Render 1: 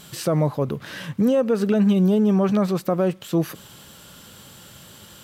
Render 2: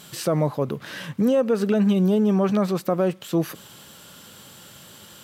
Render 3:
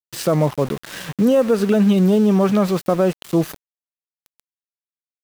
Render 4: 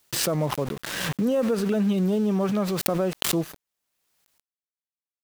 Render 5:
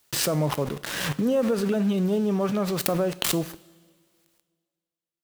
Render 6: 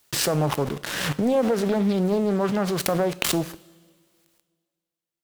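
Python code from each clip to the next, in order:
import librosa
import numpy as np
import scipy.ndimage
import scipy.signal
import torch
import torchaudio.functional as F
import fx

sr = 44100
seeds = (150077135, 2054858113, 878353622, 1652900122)

y1 = fx.highpass(x, sr, hz=140.0, slope=6)
y2 = np.where(np.abs(y1) >= 10.0 ** (-33.0 / 20.0), y1, 0.0)
y2 = y2 * librosa.db_to_amplitude(4.5)
y3 = fx.pre_swell(y2, sr, db_per_s=32.0)
y3 = y3 * librosa.db_to_amplitude(-8.5)
y4 = fx.rev_double_slope(y3, sr, seeds[0], early_s=0.47, late_s=2.0, knee_db=-16, drr_db=13.0)
y5 = fx.doppler_dist(y4, sr, depth_ms=0.42)
y5 = y5 * librosa.db_to_amplitude(2.0)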